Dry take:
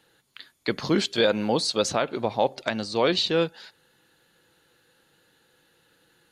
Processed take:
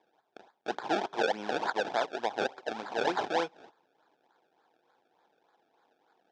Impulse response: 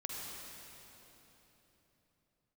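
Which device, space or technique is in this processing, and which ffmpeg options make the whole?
circuit-bent sampling toy: -af "acrusher=samples=30:mix=1:aa=0.000001:lfo=1:lforange=30:lforate=3.4,highpass=550,equalizer=f=550:t=q:w=4:g=-7,equalizer=f=800:t=q:w=4:g=4,equalizer=f=1.2k:t=q:w=4:g=-8,equalizer=f=2k:t=q:w=4:g=-10,equalizer=f=2.8k:t=q:w=4:g=-8,equalizer=f=4.3k:t=q:w=4:g=-8,lowpass=f=4.5k:w=0.5412,lowpass=f=4.5k:w=1.3066"

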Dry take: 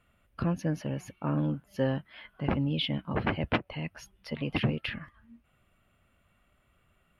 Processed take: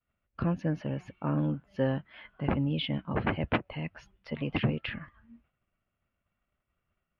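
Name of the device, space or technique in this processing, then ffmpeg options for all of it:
hearing-loss simulation: -af "lowpass=3.1k,agate=range=-33dB:threshold=-58dB:ratio=3:detection=peak"

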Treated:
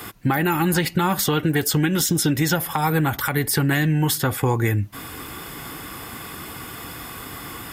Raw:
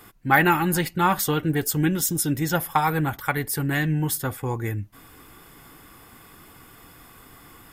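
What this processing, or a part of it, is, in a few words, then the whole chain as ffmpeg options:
mastering chain: -filter_complex "[0:a]highpass=51,equalizer=f=3.7k:t=o:w=1.6:g=2.5,acrossover=split=560|5400[a][b][c];[a]acompressor=threshold=-25dB:ratio=4[d];[b]acompressor=threshold=-28dB:ratio=4[e];[c]acompressor=threshold=-34dB:ratio=4[f];[d][e][f]amix=inputs=3:normalize=0,acompressor=threshold=-31dB:ratio=3,alimiter=level_in=21dB:limit=-1dB:release=50:level=0:latency=1,volume=-8dB"

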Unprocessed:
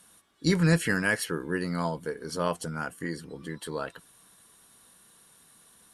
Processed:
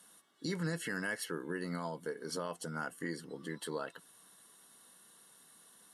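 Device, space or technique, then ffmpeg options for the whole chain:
PA system with an anti-feedback notch: -filter_complex "[0:a]highpass=180,asuperstop=centerf=2400:order=20:qfactor=7.9,alimiter=limit=-23.5dB:level=0:latency=1:release=271,asettb=1/sr,asplit=3[a][b][c];[a]atrim=end=1.404[d];[b]atrim=start=1.4:end=1.83,asetpts=PTS-STARTPTS,afade=t=in:d=0.004:c=qsin,afade=t=out:st=0.426:d=0.004:c=qsin,bandreject=f=4.9k:w=6.5[e];[c]atrim=start=1.826[f];[d][e]acrossfade=d=0.004:c1=hsin:c2=qsin[g];[g][f]acrossfade=d=0.004:c1=qsin:c2=hsin,volume=-3dB"

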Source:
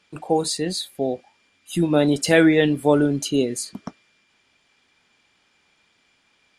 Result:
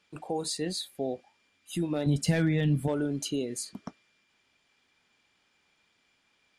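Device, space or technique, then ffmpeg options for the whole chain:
clipper into limiter: -filter_complex "[0:a]asoftclip=type=hard:threshold=-8dB,alimiter=limit=-14.5dB:level=0:latency=1:release=183,asettb=1/sr,asplit=3[a][b][c];[a]atrim=end=2.064[d];[b]atrim=start=2.06:end=2.88,asetpts=PTS-STARTPTS,afade=t=in:d=0.004:c=qsin,afade=t=out:st=0.816:d=0.004:c=qsin,lowshelf=f=250:t=q:w=1.5:g=11[e];[c]atrim=start=2.876[f];[d][e]acrossfade=d=0.004:c1=hsin:c2=qsin[g];[g][f]acrossfade=d=0.004:c1=qsin:c2=hsin,volume=-7dB"

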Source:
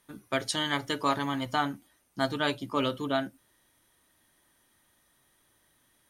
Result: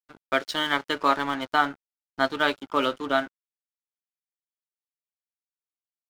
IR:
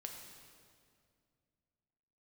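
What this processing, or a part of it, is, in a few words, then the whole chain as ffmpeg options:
pocket radio on a weak battery: -af "highpass=290,lowpass=4.1k,aeval=exprs='sgn(val(0))*max(abs(val(0))-0.00501,0)':c=same,equalizer=f=1.4k:t=o:w=0.22:g=7,volume=5.5dB"

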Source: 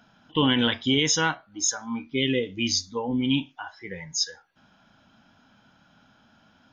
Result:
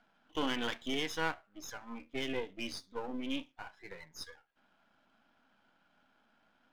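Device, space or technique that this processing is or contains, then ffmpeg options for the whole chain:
crystal radio: -af "highpass=280,lowpass=3k,aeval=exprs='if(lt(val(0),0),0.251*val(0),val(0))':c=same,volume=-6.5dB"

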